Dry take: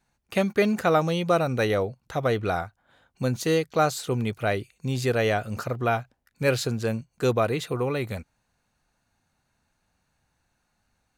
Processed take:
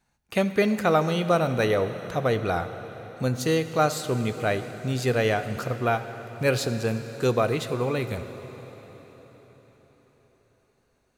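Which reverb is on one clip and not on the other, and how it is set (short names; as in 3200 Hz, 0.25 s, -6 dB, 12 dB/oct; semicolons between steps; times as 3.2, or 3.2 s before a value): plate-style reverb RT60 4.9 s, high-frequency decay 0.9×, DRR 9.5 dB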